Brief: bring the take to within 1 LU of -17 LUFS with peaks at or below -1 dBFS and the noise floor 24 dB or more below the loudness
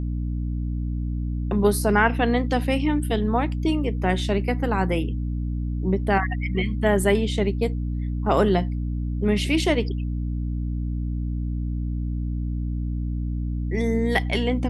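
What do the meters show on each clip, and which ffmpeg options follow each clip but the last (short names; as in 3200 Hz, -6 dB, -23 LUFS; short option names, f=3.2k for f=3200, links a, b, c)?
hum 60 Hz; harmonics up to 300 Hz; hum level -24 dBFS; loudness -24.5 LUFS; peak -5.5 dBFS; loudness target -17.0 LUFS
-> -af "bandreject=f=60:t=h:w=4,bandreject=f=120:t=h:w=4,bandreject=f=180:t=h:w=4,bandreject=f=240:t=h:w=4,bandreject=f=300:t=h:w=4"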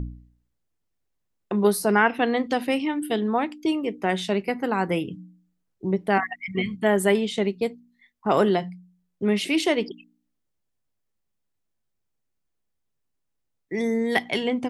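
hum none; loudness -24.5 LUFS; peak -6.0 dBFS; loudness target -17.0 LUFS
-> -af "volume=7.5dB,alimiter=limit=-1dB:level=0:latency=1"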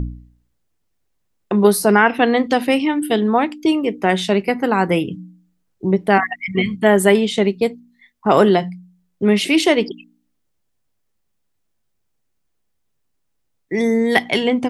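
loudness -17.0 LUFS; peak -1.0 dBFS; noise floor -69 dBFS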